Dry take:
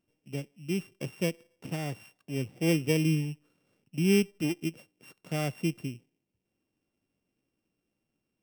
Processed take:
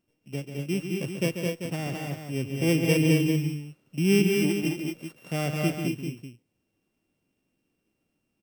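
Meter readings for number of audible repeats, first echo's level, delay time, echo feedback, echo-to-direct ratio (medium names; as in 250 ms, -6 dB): 3, -8.0 dB, 140 ms, no regular repeats, -0.5 dB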